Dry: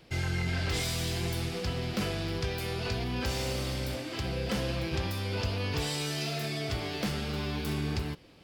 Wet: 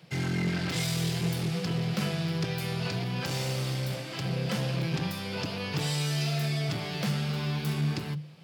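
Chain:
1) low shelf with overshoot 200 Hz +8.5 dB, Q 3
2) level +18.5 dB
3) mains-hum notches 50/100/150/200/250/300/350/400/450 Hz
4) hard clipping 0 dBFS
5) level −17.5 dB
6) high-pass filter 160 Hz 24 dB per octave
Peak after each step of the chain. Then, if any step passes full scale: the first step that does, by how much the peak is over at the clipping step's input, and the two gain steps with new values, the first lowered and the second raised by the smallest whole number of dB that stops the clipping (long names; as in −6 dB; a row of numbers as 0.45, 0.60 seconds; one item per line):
−10.5, +8.0, +7.0, 0.0, −17.5, −16.5 dBFS
step 2, 7.0 dB
step 2 +11.5 dB, step 5 −10.5 dB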